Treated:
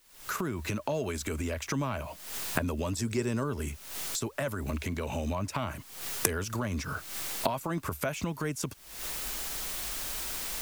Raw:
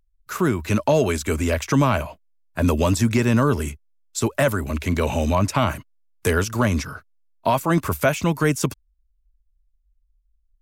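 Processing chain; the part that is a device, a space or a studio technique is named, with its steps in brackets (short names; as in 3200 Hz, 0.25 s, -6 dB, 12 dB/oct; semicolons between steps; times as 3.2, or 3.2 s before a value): 2.98–3.44 thirty-one-band EQ 400 Hz +10 dB, 5000 Hz +7 dB, 8000 Hz +10 dB; cheap recorder with automatic gain (white noise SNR 30 dB; recorder AGC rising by 77 dB/s); gain -14 dB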